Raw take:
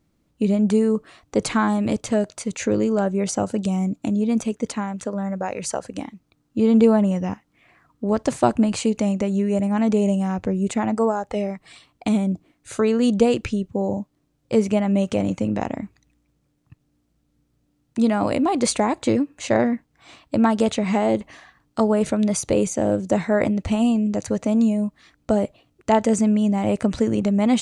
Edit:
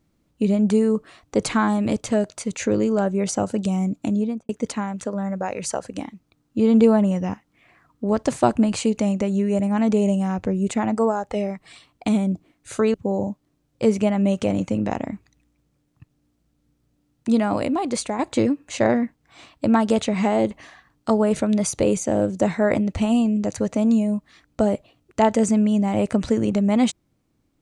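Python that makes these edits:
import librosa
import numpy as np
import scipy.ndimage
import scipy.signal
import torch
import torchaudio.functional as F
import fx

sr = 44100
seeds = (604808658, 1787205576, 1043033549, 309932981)

y = fx.studio_fade_out(x, sr, start_s=4.15, length_s=0.34)
y = fx.edit(y, sr, fx.cut(start_s=12.94, length_s=0.7),
    fx.fade_out_to(start_s=18.05, length_s=0.84, floor_db=-7.5), tone=tone)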